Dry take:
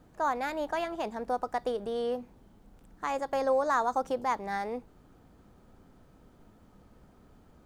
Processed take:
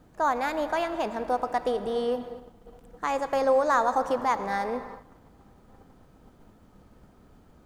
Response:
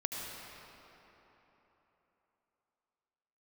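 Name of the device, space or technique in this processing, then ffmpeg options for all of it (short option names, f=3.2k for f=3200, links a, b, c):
keyed gated reverb: -filter_complex "[0:a]asplit=3[a][b][c];[1:a]atrim=start_sample=2205[d];[b][d]afir=irnorm=-1:irlink=0[e];[c]apad=whole_len=337589[f];[e][f]sidechaingate=range=-33dB:threshold=-54dB:ratio=16:detection=peak,volume=-10dB[g];[a][g]amix=inputs=2:normalize=0,volume=2dB"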